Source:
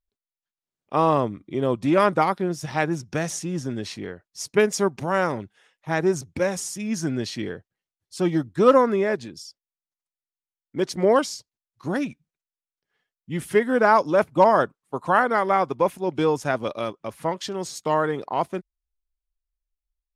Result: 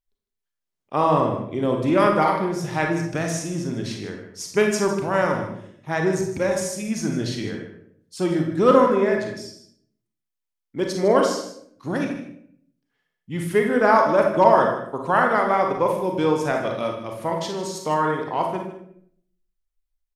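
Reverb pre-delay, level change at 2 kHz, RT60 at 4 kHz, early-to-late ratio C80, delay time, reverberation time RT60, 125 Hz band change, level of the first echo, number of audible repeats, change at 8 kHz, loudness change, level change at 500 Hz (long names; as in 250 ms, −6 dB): 33 ms, +1.5 dB, 0.50 s, 7.0 dB, 154 ms, 0.70 s, +2.0 dB, −12.5 dB, 1, +0.5 dB, +1.5 dB, +1.5 dB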